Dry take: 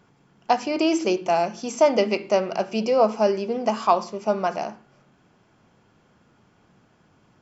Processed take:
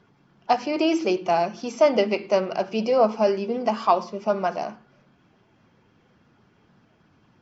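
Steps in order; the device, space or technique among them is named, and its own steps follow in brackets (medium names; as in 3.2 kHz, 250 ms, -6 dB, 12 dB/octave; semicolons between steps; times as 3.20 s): clip after many re-uploads (low-pass 5.6 kHz 24 dB/octave; coarse spectral quantiser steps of 15 dB)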